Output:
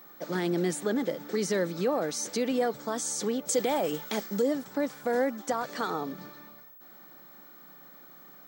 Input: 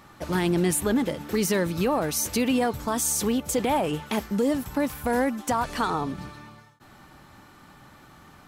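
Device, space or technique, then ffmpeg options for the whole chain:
old television with a line whistle: -filter_complex "[0:a]highpass=f=180:w=0.5412,highpass=f=180:w=1.3066,equalizer=f=240:t=q:w=4:g=-4,equalizer=f=510:t=q:w=4:g=4,equalizer=f=980:t=q:w=4:g=-7,equalizer=f=2700:t=q:w=4:g=-9,lowpass=f=7800:w=0.5412,lowpass=f=7800:w=1.3066,aeval=exprs='val(0)+0.00501*sin(2*PI*15734*n/s)':c=same,asettb=1/sr,asplit=3[s0][s1][s2];[s0]atrim=end=3.474[s3];[s1]atrim=start=3.47:end=4.42,asetpts=PTS-STARTPTS,afade=t=in:d=0.004:c=qsin,afade=t=out:st=0.946:d=0.004:c=qsin,highshelf=f=3400:g=8.5[s4];[s2]atrim=start=4.416[s5];[s3][s4]acrossfade=d=0.004:c1=hsin:c2=qsin[s6];[s6][s5]acrossfade=d=0.004:c1=qsin:c2=hsin,volume=0.668"

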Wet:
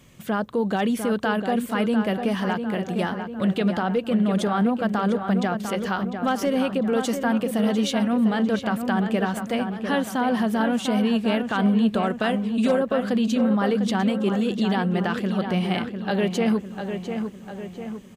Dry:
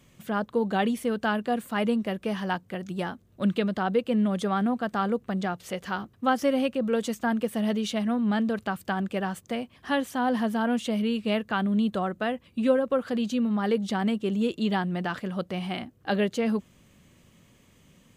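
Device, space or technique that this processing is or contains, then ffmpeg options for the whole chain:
clipper into limiter: -filter_complex "[0:a]asoftclip=type=hard:threshold=0.168,alimiter=limit=0.0891:level=0:latency=1:release=46,asettb=1/sr,asplit=3[s0][s1][s2];[s0]atrim=end=12.034[s3];[s1]atrim=start=12.03:end=12.8,asetpts=PTS-STARTPTS,afade=t=in:d=0.004:c=qsin,afade=t=out:st=0.766:d=0.004:c=qsin,equalizer=f=6800:w=0.73:g=9.5[s4];[s2]atrim=start=12.796[s5];[s3][s4]acrossfade=d=0.004:c1=hsin:c2=qsin[s6];[s6][s5]acrossfade=d=0.004:c1=qsin:c2=hsin,asplit=2[s7][s8];[s8]adelay=700,lowpass=f=3000:p=1,volume=0.447,asplit=2[s9][s10];[s10]adelay=700,lowpass=f=3000:p=1,volume=0.55,asplit=2[s11][s12];[s12]adelay=700,lowpass=f=3000:p=1,volume=0.55,asplit=2[s13][s14];[s14]adelay=700,lowpass=f=3000:p=1,volume=0.55,asplit=2[s15][s16];[s16]adelay=700,lowpass=f=3000:p=1,volume=0.55,asplit=2[s17][s18];[s18]adelay=700,lowpass=f=3000:p=1,volume=0.55,asplit=2[s19][s20];[s20]adelay=700,lowpass=f=3000:p=1,volume=0.55[s21];[s7][s9][s11][s13][s15][s17][s19][s21]amix=inputs=8:normalize=0,volume=1.88"

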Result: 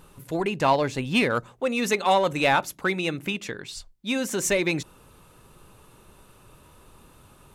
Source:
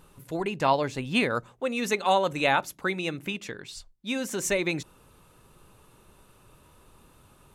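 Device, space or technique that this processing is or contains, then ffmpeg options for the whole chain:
parallel distortion: -filter_complex "[0:a]asplit=2[s0][s1];[s1]asoftclip=type=hard:threshold=0.0668,volume=0.562[s2];[s0][s2]amix=inputs=2:normalize=0"

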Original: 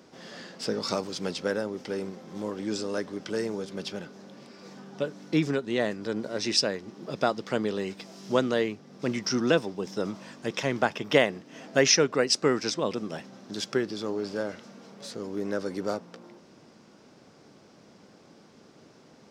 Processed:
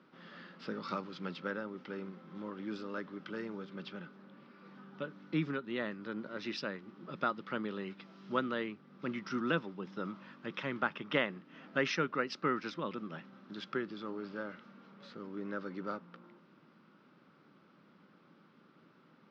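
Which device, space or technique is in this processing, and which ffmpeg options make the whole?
kitchen radio: -filter_complex "[0:a]highpass=160,equalizer=f=170:t=q:w=4:g=6,equalizer=f=450:t=q:w=4:g=-6,equalizer=f=700:t=q:w=4:g=-9,equalizer=f=1300:t=q:w=4:g=9,lowpass=f=3600:w=0.5412,lowpass=f=3600:w=1.3066,asettb=1/sr,asplit=3[s0][s1][s2];[s0]atrim=end=4.164[s3];[s1]atrim=start=4.16:end=4.74,asetpts=PTS-STARTPTS,afade=t=in:d=0.004:c=qsin,afade=t=out:st=0.576:d=0.004:c=qsin,highshelf=f=6300:g=-9.5[s4];[s2]atrim=start=4.736[s5];[s3][s4]acrossfade=d=0.004:c1=hsin:c2=qsin[s6];[s6][s5]acrossfade=d=0.004:c1=qsin:c2=hsin,volume=0.398"

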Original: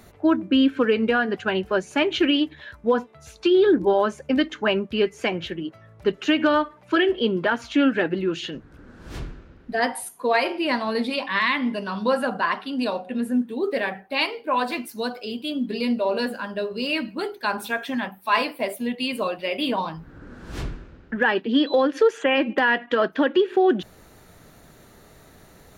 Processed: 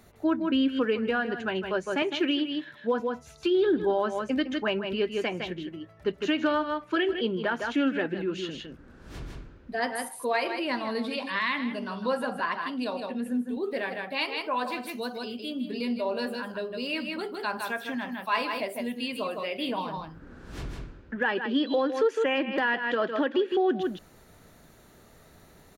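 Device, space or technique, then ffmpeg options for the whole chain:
ducked delay: -filter_complex "[0:a]asplit=3[s0][s1][s2];[s1]adelay=158,volume=0.708[s3];[s2]apad=whole_len=1143452[s4];[s3][s4]sidechaincompress=threshold=0.0316:ratio=8:attack=6.9:release=104[s5];[s0][s5]amix=inputs=2:normalize=0,asettb=1/sr,asplit=3[s6][s7][s8];[s6]atrim=end=2.024[s9];[s7]atrim=start=2.02:end=3,asetpts=PTS-STARTPTS,afade=t=in:d=0.004:c=qsin,afade=t=out:st=0.976:d=0.004:c=qsin,highpass=f=130:w=0.5412,highpass=f=130:w=1.3066[s10];[s8]atrim=start=2.996[s11];[s9][s10]acrossfade=d=0.004:c1=hsin:c2=qsin[s12];[s12][s11]acrossfade=d=0.004:c1=qsin:c2=hsin,volume=0.473"

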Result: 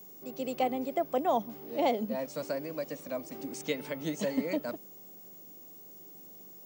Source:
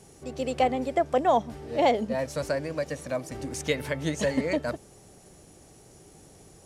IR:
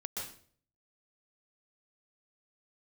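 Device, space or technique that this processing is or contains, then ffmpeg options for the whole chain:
old television with a line whistle: -af "highpass=f=170:w=0.5412,highpass=f=170:w=1.3066,equalizer=f=200:t=q:w=4:g=5,equalizer=f=290:t=q:w=4:g=3,equalizer=f=1700:t=q:w=4:g=-6,lowpass=f=8900:w=0.5412,lowpass=f=8900:w=1.3066,aeval=exprs='val(0)+0.00794*sin(2*PI*15625*n/s)':c=same,volume=0.501"

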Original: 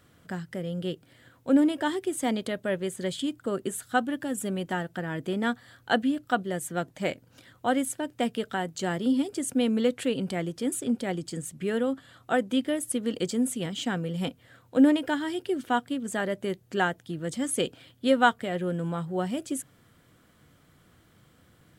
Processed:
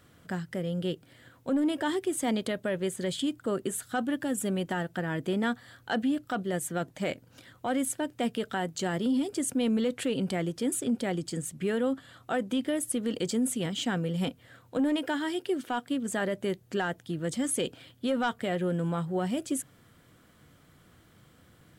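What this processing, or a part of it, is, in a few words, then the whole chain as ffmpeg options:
soft clipper into limiter: -filter_complex "[0:a]asettb=1/sr,asplit=3[s0][s1][s2];[s0]atrim=end=14.794[s3];[s1]atrim=start=14.79:end=15.9,asetpts=PTS-STARTPTS,afade=t=in:d=0.004:c=qsin,afade=t=out:st=1.106:d=0.004:c=qsin,highpass=f=220:p=1[s4];[s2]atrim=start=15.896[s5];[s3][s4]acrossfade=d=0.004:c1=hsin:c2=qsin[s6];[s6][s5]acrossfade=d=0.004:c1=qsin:c2=hsin,asoftclip=type=tanh:threshold=0.211,alimiter=limit=0.0794:level=0:latency=1:release=26,volume=1.12"

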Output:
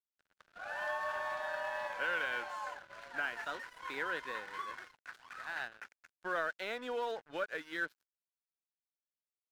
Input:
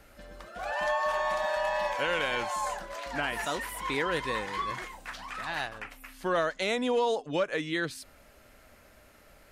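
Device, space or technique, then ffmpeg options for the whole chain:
pocket radio on a weak battery: -af "highpass=330,lowpass=4200,aeval=exprs='sgn(val(0))*max(abs(val(0))-0.00668,0)':c=same,equalizer=f=1500:t=o:w=0.35:g=11,volume=0.355"

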